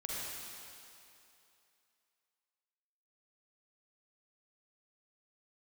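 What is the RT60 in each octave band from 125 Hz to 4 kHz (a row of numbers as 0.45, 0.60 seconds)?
2.3, 2.4, 2.7, 2.8, 2.7, 2.6 seconds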